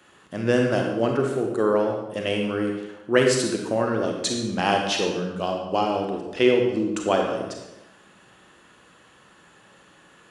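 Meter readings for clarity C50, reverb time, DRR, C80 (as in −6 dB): 3.0 dB, 0.95 s, 1.5 dB, 5.0 dB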